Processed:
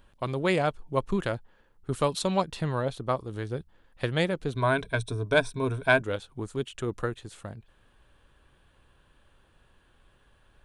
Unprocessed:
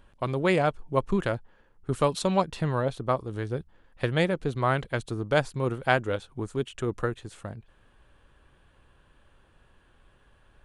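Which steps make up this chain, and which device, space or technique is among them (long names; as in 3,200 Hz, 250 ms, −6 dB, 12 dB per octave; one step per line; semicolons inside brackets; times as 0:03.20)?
presence and air boost (parametric band 3,800 Hz +3 dB 0.77 octaves; high-shelf EQ 9,000 Hz +6 dB)
0:04.53–0:06.02: EQ curve with evenly spaced ripples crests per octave 1.6, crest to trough 13 dB
level −2 dB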